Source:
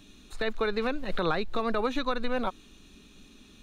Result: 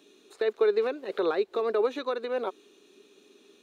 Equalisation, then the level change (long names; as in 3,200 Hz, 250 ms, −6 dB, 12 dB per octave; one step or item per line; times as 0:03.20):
high-pass with resonance 400 Hz, resonance Q 4.9
−5.0 dB